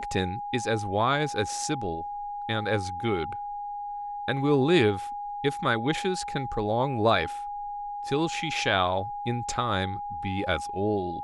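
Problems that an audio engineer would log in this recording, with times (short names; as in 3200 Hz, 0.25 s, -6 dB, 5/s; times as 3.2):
tone 820 Hz -32 dBFS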